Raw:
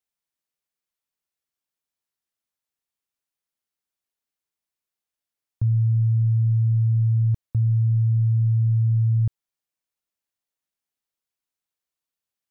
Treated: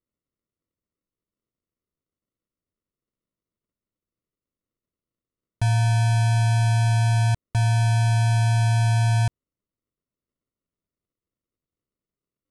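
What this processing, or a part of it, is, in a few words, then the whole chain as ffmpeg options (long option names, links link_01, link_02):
crushed at another speed: -af "asetrate=88200,aresample=44100,acrusher=samples=27:mix=1:aa=0.000001,asetrate=22050,aresample=44100"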